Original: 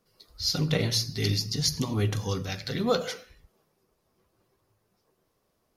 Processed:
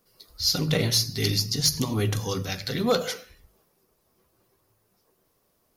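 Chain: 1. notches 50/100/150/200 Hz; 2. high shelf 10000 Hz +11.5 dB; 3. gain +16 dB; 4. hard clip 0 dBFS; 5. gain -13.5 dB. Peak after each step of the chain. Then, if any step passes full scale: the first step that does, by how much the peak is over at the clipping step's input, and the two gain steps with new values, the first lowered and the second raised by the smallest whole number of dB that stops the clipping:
-12.0, -10.5, +5.5, 0.0, -13.5 dBFS; step 3, 5.5 dB; step 3 +10 dB, step 5 -7.5 dB

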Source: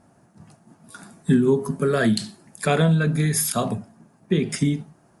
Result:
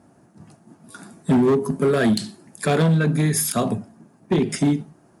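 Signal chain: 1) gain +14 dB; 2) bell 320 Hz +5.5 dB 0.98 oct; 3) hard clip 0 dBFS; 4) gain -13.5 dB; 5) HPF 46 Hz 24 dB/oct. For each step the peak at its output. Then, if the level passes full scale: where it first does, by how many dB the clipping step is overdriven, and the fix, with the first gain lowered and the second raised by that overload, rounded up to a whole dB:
+6.0, +9.0, 0.0, -13.5, -9.0 dBFS; step 1, 9.0 dB; step 1 +5 dB, step 4 -4.5 dB

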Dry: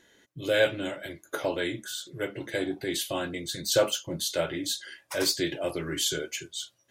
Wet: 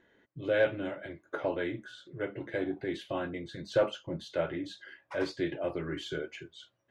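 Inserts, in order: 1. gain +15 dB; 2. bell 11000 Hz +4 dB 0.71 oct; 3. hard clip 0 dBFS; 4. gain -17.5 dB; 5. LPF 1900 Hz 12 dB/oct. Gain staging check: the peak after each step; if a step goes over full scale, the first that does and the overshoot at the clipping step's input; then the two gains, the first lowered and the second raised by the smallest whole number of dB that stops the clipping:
+4.0, +4.0, 0.0, -17.5, -17.0 dBFS; step 1, 4.0 dB; step 1 +11 dB, step 4 -13.5 dB

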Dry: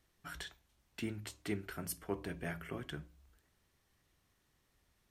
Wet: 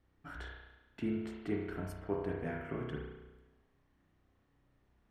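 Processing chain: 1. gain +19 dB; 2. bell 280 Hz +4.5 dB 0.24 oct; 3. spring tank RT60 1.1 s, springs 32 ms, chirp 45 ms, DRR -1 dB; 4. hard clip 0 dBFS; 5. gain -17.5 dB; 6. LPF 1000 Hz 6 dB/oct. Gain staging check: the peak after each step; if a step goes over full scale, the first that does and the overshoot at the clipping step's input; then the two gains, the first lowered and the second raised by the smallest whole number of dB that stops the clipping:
-5.0, -4.5, -3.5, -3.5, -21.0, -22.5 dBFS; no overload

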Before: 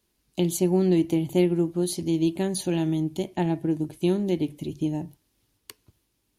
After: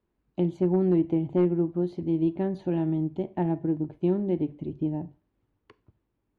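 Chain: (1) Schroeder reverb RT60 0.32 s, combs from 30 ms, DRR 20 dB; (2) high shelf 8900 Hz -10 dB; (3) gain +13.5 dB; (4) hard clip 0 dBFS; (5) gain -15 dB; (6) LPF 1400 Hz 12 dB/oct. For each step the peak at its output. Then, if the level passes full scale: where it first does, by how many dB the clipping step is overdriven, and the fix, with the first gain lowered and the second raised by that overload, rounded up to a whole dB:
-10.0, -10.0, +3.5, 0.0, -15.0, -15.0 dBFS; step 3, 3.5 dB; step 3 +9.5 dB, step 5 -11 dB

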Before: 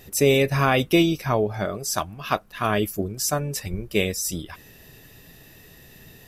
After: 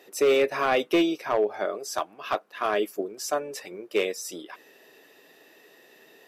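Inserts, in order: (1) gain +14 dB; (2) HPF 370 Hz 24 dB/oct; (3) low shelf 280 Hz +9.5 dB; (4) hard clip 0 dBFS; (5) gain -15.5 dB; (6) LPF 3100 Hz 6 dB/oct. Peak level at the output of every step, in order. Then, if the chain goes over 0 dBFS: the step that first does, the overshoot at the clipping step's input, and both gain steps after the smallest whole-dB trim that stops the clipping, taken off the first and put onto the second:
+7.5, +7.5, +9.0, 0.0, -15.5, -15.5 dBFS; step 1, 9.0 dB; step 1 +5 dB, step 5 -6.5 dB

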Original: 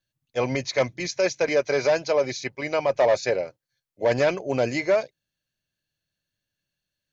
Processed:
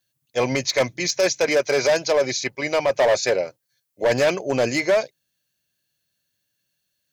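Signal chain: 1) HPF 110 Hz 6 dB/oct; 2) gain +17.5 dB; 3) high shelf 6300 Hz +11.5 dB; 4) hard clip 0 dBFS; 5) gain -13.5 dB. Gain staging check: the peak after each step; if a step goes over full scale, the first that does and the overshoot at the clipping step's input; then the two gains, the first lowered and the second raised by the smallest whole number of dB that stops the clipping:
-11.5, +6.0, +7.0, 0.0, -13.5 dBFS; step 2, 7.0 dB; step 2 +10.5 dB, step 5 -6.5 dB

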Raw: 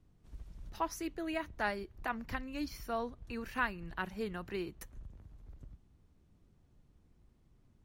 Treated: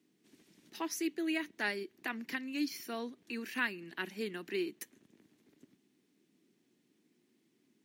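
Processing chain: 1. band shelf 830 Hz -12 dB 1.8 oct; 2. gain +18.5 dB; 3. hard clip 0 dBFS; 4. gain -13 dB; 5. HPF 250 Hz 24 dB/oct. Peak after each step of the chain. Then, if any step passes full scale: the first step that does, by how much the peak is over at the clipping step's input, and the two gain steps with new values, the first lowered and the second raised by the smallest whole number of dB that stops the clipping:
-23.5, -5.0, -5.0, -18.0, -20.0 dBFS; no overload

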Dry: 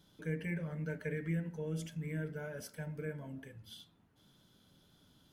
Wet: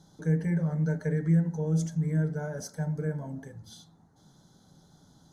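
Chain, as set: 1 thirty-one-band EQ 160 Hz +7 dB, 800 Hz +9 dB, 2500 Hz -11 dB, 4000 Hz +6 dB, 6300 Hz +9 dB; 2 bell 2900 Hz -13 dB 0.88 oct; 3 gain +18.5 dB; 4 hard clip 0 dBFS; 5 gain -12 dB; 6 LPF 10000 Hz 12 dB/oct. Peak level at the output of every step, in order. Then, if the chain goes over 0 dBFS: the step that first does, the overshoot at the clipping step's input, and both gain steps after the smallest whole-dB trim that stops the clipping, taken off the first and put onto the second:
-21.5, -22.0, -3.5, -3.5, -15.5, -15.5 dBFS; no overload

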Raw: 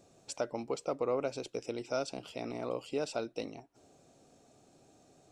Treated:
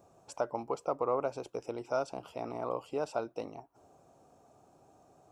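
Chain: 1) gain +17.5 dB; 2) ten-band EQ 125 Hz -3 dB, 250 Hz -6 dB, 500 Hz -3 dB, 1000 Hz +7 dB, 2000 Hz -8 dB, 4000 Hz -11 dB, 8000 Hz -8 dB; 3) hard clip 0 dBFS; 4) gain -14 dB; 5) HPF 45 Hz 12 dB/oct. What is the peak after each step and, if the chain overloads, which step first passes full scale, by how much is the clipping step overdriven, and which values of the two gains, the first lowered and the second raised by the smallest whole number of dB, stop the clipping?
-3.0, -4.0, -4.0, -18.0, -18.0 dBFS; no overload

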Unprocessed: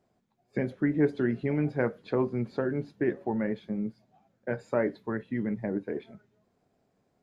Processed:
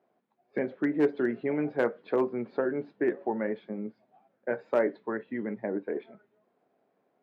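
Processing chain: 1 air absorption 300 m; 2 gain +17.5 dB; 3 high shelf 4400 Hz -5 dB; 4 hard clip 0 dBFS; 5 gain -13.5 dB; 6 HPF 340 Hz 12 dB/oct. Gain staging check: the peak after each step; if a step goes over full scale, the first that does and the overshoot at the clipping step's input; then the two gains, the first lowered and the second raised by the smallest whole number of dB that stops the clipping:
-14.5, +3.0, +3.0, 0.0, -13.5, -13.5 dBFS; step 2, 3.0 dB; step 2 +14.5 dB, step 5 -10.5 dB

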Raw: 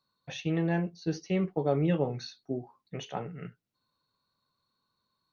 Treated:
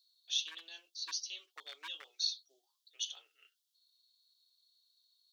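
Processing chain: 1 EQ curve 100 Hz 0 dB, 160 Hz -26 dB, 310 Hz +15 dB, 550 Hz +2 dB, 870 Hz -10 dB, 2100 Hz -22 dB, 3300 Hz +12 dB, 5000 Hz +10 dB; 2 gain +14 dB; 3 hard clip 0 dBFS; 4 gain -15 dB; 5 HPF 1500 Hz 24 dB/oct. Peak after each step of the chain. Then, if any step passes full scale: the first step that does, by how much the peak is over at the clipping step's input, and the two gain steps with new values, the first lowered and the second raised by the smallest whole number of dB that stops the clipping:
-9.5, +4.5, 0.0, -15.0, -20.5 dBFS; step 2, 4.5 dB; step 2 +9 dB, step 4 -10 dB

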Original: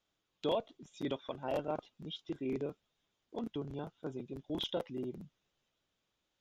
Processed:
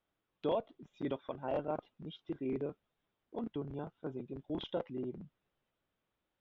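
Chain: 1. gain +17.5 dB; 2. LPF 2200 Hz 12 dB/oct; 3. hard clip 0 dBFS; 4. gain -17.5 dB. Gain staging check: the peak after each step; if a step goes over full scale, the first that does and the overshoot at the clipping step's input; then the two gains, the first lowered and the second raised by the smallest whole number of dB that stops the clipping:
-5.0, -5.5, -5.5, -23.0 dBFS; no overload

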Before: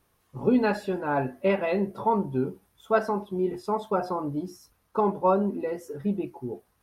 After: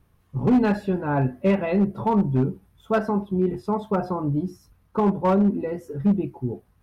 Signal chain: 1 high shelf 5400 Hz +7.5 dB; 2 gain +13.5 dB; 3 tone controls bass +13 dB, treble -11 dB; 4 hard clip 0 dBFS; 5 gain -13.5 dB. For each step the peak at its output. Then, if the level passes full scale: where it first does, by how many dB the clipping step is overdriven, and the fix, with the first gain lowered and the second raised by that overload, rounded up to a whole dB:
-10.0, +3.5, +7.0, 0.0, -13.5 dBFS; step 2, 7.0 dB; step 2 +6.5 dB, step 5 -6.5 dB

